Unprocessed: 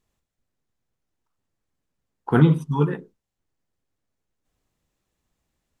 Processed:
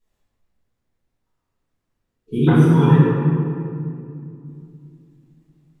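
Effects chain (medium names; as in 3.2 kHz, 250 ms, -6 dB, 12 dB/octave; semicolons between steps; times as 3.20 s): 2.53–2.94 s: treble shelf 2.3 kHz +9 dB; reverberation RT60 2.5 s, pre-delay 4 ms, DRR -14 dB; 2.11–2.46 s: spectral replace 470–2200 Hz before; trim -9 dB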